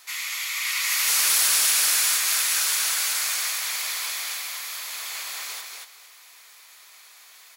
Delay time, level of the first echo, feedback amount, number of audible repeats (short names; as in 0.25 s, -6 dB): 0.235 s, -3.5 dB, 15%, 2